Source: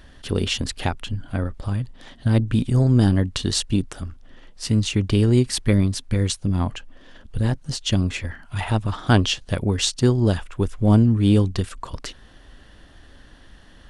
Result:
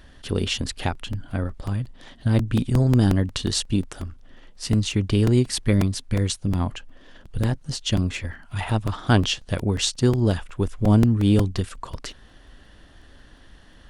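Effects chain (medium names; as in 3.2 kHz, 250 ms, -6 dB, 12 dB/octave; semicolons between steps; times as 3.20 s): crackling interface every 0.18 s, samples 128, repeat, from 0.95 s; trim -1.5 dB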